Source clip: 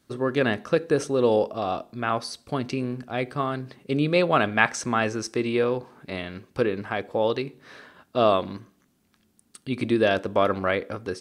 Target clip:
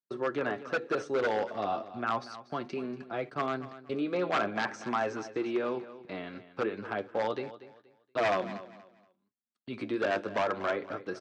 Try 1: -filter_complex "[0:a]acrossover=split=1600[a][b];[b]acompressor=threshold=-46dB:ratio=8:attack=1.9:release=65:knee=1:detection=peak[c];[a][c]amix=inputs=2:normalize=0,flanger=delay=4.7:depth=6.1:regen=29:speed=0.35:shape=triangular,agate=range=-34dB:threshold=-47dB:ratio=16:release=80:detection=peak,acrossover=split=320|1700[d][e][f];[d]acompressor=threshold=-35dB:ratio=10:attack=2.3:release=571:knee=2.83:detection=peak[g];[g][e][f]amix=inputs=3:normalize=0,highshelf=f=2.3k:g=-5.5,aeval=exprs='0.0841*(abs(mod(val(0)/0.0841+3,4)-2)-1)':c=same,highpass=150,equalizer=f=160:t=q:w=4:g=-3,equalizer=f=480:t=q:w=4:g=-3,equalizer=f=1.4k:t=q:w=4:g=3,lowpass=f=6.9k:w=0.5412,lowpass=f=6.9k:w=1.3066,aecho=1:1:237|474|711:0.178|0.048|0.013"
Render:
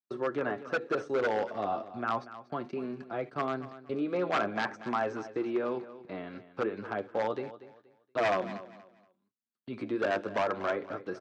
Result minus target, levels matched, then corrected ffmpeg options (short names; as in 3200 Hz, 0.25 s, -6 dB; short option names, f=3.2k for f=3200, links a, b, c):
compressor: peak gain reduction +8 dB
-filter_complex "[0:a]acrossover=split=1600[a][b];[b]acompressor=threshold=-37dB:ratio=8:attack=1.9:release=65:knee=1:detection=peak[c];[a][c]amix=inputs=2:normalize=0,flanger=delay=4.7:depth=6.1:regen=29:speed=0.35:shape=triangular,agate=range=-34dB:threshold=-47dB:ratio=16:release=80:detection=peak,acrossover=split=320|1700[d][e][f];[d]acompressor=threshold=-35dB:ratio=10:attack=2.3:release=571:knee=2.83:detection=peak[g];[g][e][f]amix=inputs=3:normalize=0,highshelf=f=2.3k:g=-5.5,aeval=exprs='0.0841*(abs(mod(val(0)/0.0841+3,4)-2)-1)':c=same,highpass=150,equalizer=f=160:t=q:w=4:g=-3,equalizer=f=480:t=q:w=4:g=-3,equalizer=f=1.4k:t=q:w=4:g=3,lowpass=f=6.9k:w=0.5412,lowpass=f=6.9k:w=1.3066,aecho=1:1:237|474|711:0.178|0.048|0.013"